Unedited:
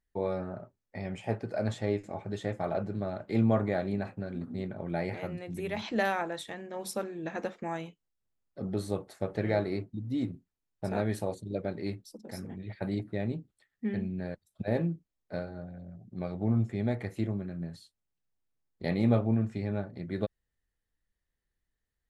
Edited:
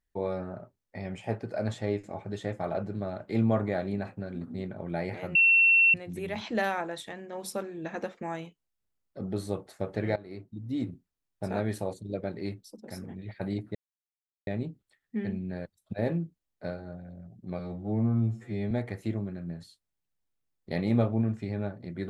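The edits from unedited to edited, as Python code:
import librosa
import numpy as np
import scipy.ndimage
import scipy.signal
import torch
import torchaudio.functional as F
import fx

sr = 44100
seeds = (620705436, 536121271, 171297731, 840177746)

y = fx.edit(x, sr, fx.insert_tone(at_s=5.35, length_s=0.59, hz=2710.0, db=-17.0),
    fx.fade_in_from(start_s=9.57, length_s=0.61, floor_db=-20.5),
    fx.insert_silence(at_s=13.16, length_s=0.72),
    fx.stretch_span(start_s=16.28, length_s=0.56, factor=2.0), tone=tone)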